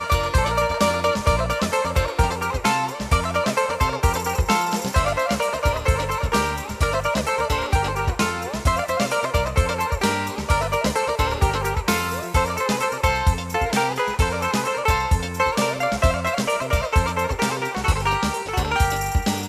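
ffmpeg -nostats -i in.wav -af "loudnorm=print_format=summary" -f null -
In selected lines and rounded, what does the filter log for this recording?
Input Integrated:    -21.9 LUFS
Input True Peak:      -7.7 dBTP
Input LRA:             0.9 LU
Input Threshold:     -31.9 LUFS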